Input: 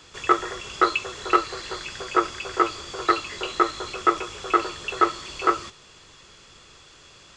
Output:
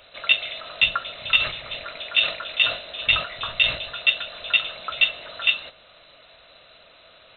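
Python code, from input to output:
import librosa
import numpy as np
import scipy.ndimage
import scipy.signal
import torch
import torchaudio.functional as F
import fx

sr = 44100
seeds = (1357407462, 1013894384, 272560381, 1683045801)

y = fx.freq_invert(x, sr, carrier_hz=4000)
y = fx.sustainer(y, sr, db_per_s=120.0, at=(1.39, 4.0), fade=0.02)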